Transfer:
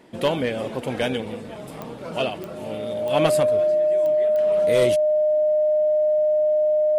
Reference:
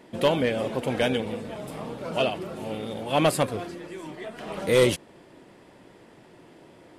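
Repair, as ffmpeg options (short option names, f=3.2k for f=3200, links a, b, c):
-af "adeclick=t=4,bandreject=f=610:w=30,asetnsamples=n=441:p=0,asendcmd='3.4 volume volume 3dB',volume=0dB"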